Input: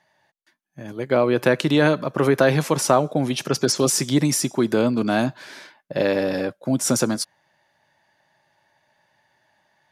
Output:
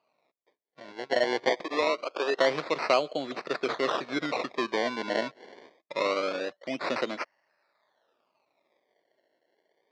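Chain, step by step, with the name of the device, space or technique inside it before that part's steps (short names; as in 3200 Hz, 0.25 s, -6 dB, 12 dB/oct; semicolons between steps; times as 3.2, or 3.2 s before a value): 1.5–2.37 HPF 330 Hz 24 dB/oct; circuit-bent sampling toy (decimation with a swept rate 24×, swing 100% 0.24 Hz; speaker cabinet 520–4400 Hz, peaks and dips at 850 Hz -8 dB, 1600 Hz -5 dB, 3000 Hz -7 dB); gain -2.5 dB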